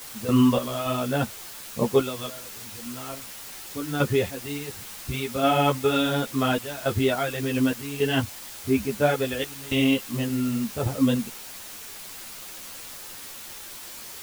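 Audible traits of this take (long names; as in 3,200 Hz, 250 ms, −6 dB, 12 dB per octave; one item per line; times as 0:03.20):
sample-and-hold tremolo, depth 95%
a quantiser's noise floor 8 bits, dither triangular
a shimmering, thickened sound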